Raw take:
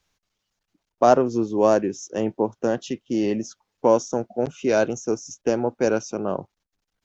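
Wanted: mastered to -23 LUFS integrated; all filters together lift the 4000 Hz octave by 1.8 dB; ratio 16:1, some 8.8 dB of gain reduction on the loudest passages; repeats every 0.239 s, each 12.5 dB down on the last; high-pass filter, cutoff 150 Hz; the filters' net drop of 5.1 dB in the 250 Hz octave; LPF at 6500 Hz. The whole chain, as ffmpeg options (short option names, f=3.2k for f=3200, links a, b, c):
-af "highpass=150,lowpass=6.5k,equalizer=f=250:t=o:g=-6.5,equalizer=f=4k:t=o:g=4,acompressor=threshold=-20dB:ratio=16,aecho=1:1:239|478|717:0.237|0.0569|0.0137,volume=6dB"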